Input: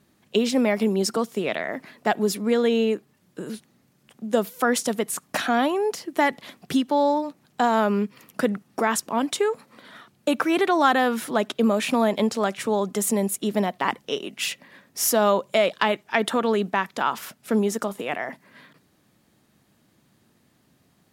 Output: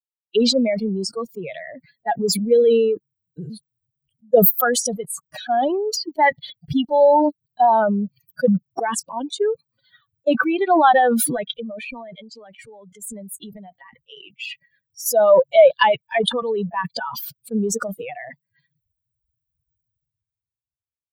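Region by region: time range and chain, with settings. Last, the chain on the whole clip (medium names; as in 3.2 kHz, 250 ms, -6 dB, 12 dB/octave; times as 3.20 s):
11.25–15.06 s: dynamic bell 2 kHz, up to +6 dB, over -43 dBFS, Q 1.4 + compression 8:1, threshold -23 dBFS
whole clip: expander on every frequency bin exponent 3; high-order bell 620 Hz +9 dB 1.1 oct; decay stretcher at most 24 dB/s; trim +3 dB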